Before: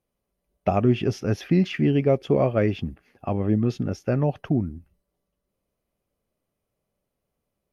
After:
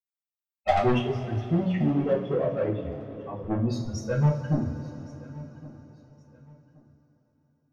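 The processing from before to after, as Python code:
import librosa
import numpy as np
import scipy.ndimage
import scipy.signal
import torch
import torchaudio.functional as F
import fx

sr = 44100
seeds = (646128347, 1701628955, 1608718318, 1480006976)

y = fx.bin_expand(x, sr, power=3.0)
y = fx.hum_notches(y, sr, base_hz=60, count=5)
y = 10.0 ** (-28.5 / 20.0) * np.tanh(y / 10.0 ** (-28.5 / 20.0))
y = fx.bandpass_q(y, sr, hz=270.0, q=0.62, at=(0.98, 3.44))
y = fx.echo_feedback(y, sr, ms=1118, feedback_pct=31, wet_db=-21)
y = fx.rev_double_slope(y, sr, seeds[0], early_s=0.33, late_s=4.6, knee_db=-19, drr_db=-4.5)
y = y * 10.0 ** (5.5 / 20.0)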